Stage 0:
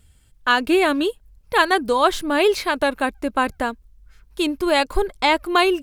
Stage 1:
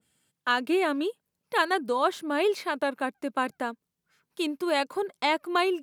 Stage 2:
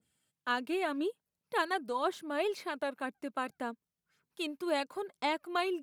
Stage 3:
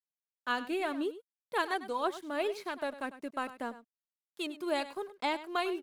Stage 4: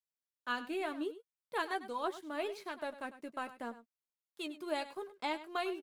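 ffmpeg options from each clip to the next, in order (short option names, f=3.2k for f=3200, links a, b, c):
-af "highpass=f=160:w=0.5412,highpass=f=160:w=1.3066,adynamicequalizer=threshold=0.0282:dfrequency=2000:dqfactor=0.7:tfrequency=2000:tqfactor=0.7:attack=5:release=100:ratio=0.375:range=3:mode=cutabove:tftype=highshelf,volume=-7.5dB"
-af "aeval=exprs='0.376*(cos(1*acos(clip(val(0)/0.376,-1,1)))-cos(1*PI/2))+0.00596*(cos(2*acos(clip(val(0)/0.376,-1,1)))-cos(2*PI/2))':c=same,flanger=delay=0.1:depth=1.5:regen=62:speed=1.9:shape=sinusoidal,volume=-3dB"
-af "aeval=exprs='sgn(val(0))*max(abs(val(0))-0.00112,0)':c=same,aecho=1:1:100:0.188"
-filter_complex "[0:a]asplit=2[a][b];[b]adelay=13,volume=-9.5dB[c];[a][c]amix=inputs=2:normalize=0,volume=-5dB"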